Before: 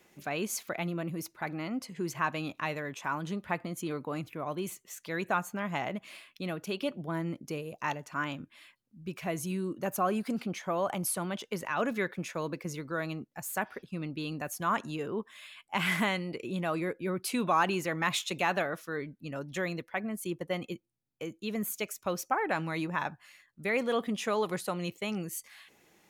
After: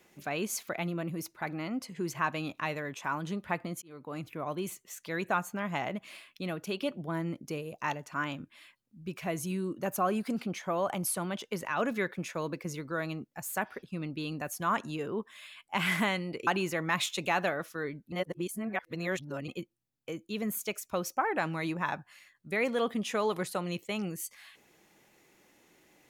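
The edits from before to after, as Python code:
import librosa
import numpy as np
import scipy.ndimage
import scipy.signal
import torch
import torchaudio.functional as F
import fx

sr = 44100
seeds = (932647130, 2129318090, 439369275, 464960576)

y = fx.edit(x, sr, fx.fade_in_span(start_s=3.82, length_s=0.49),
    fx.cut(start_s=16.47, length_s=1.13),
    fx.reverse_span(start_s=19.25, length_s=1.36), tone=tone)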